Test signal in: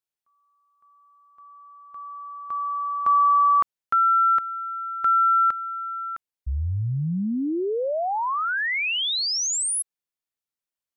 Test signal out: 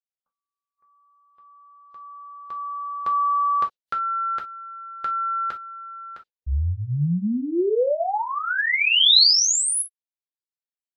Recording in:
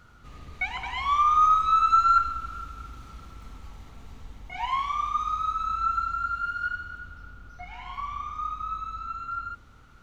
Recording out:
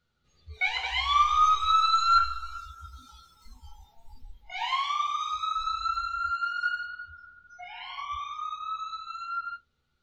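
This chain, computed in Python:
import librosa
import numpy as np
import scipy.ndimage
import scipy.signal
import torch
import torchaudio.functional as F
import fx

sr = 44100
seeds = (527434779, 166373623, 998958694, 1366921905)

y = fx.graphic_eq_10(x, sr, hz=(500, 1000, 4000), db=(6, -5, 11))
y = fx.rev_gated(y, sr, seeds[0], gate_ms=80, shape='falling', drr_db=0.5)
y = fx.noise_reduce_blind(y, sr, reduce_db=23)
y = F.gain(torch.from_numpy(y), -1.5).numpy()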